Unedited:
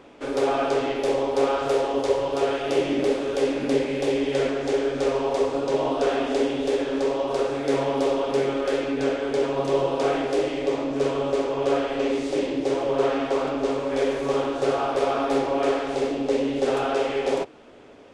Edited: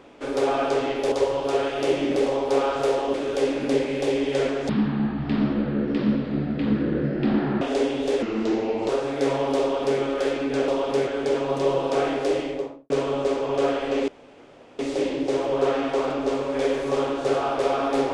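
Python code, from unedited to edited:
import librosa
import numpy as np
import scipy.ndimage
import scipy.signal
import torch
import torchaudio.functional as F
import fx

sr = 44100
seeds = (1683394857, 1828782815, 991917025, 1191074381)

y = fx.studio_fade_out(x, sr, start_s=10.45, length_s=0.53)
y = fx.edit(y, sr, fx.move(start_s=1.12, length_s=0.88, to_s=3.14),
    fx.speed_span(start_s=4.69, length_s=1.52, speed=0.52),
    fx.speed_span(start_s=6.82, length_s=0.54, speed=0.81),
    fx.duplicate(start_s=8.08, length_s=0.39, to_s=9.15),
    fx.insert_room_tone(at_s=12.16, length_s=0.71), tone=tone)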